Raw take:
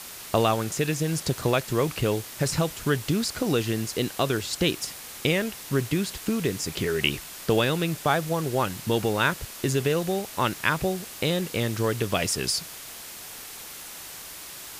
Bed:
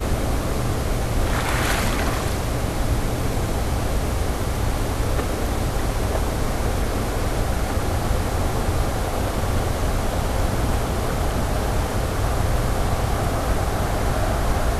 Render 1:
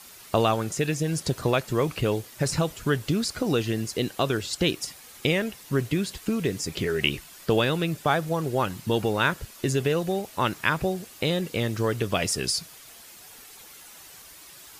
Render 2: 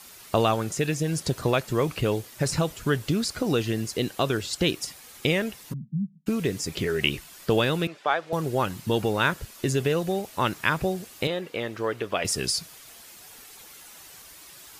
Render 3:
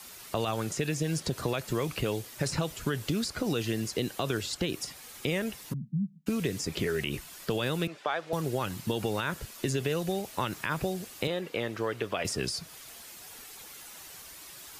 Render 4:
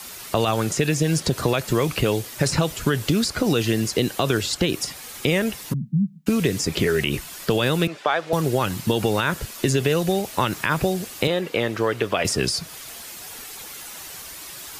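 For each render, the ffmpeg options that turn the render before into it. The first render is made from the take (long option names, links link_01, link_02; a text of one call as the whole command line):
ffmpeg -i in.wav -af "afftdn=noise_reduction=9:noise_floor=-41" out.wav
ffmpeg -i in.wav -filter_complex "[0:a]asplit=3[link_01][link_02][link_03];[link_01]afade=type=out:start_time=5.72:duration=0.02[link_04];[link_02]asuperpass=centerf=180:order=8:qfactor=2.2,afade=type=in:start_time=5.72:duration=0.02,afade=type=out:start_time=6.26:duration=0.02[link_05];[link_03]afade=type=in:start_time=6.26:duration=0.02[link_06];[link_04][link_05][link_06]amix=inputs=3:normalize=0,asettb=1/sr,asplit=3[link_07][link_08][link_09];[link_07]atrim=end=7.874[link_10];[link_08]atrim=start=7.87:end=8.33,asetpts=PTS-STARTPTS,afade=type=in:duration=0.004:curve=qsin,afade=type=out:start_time=0.456:duration=0.004:curve=qsin,highpass=510,lowpass=3700[link_11];[link_09]atrim=start=8.326[link_12];[link_10][link_11]acrossfade=duration=0.004:curve1=hsin:curve2=qsin[link_13];[link_13][link_12]acrossfade=duration=0.004:curve1=qsin:curve2=hsin,asettb=1/sr,asplit=3[link_14][link_15][link_16];[link_14]atrim=end=11.274[link_17];[link_15]atrim=start=11.27:end=12.25,asetpts=PTS-STARTPTS,afade=type=in:duration=0.004:curve=qsin,afade=type=out:start_time=0.976:duration=0.004:curve=qsin,bass=frequency=250:gain=-13,treble=frequency=4000:gain=-12[link_18];[link_16]atrim=start=12.246[link_19];[link_17][link_18]acrossfade=duration=0.004:curve1=hsin:curve2=qsin[link_20];[link_20][link_19]acrossfade=duration=0.004:curve1=qsin:curve2=hsin" out.wav
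ffmpeg -i in.wav -filter_complex "[0:a]alimiter=limit=-15.5dB:level=0:latency=1:release=58,acrossover=split=140|2000|5600[link_01][link_02][link_03][link_04];[link_01]acompressor=threshold=-39dB:ratio=4[link_05];[link_02]acompressor=threshold=-28dB:ratio=4[link_06];[link_03]acompressor=threshold=-37dB:ratio=4[link_07];[link_04]acompressor=threshold=-40dB:ratio=4[link_08];[link_05][link_06][link_07][link_08]amix=inputs=4:normalize=0" out.wav
ffmpeg -i in.wav -af "volume=9.5dB" out.wav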